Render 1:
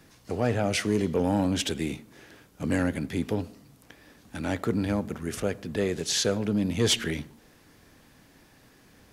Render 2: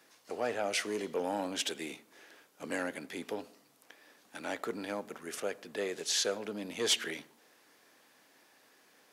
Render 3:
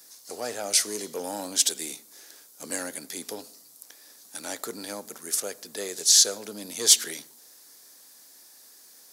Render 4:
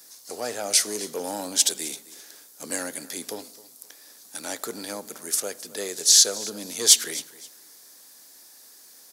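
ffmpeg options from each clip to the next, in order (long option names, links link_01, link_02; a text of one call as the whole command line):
ffmpeg -i in.wav -af "highpass=450,volume=-4dB" out.wav
ffmpeg -i in.wav -af "aexciter=amount=5.2:drive=6.9:freq=4000" out.wav
ffmpeg -i in.wav -af "aecho=1:1:263|526:0.112|0.0292,volume=2dB" out.wav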